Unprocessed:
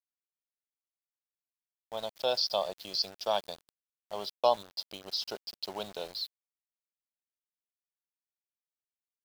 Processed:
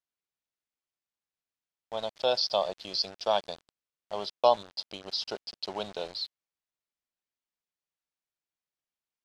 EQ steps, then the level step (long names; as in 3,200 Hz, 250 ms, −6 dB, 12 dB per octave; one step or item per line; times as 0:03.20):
low-pass filter 10,000 Hz 12 dB per octave
high-frequency loss of the air 57 metres
+3.5 dB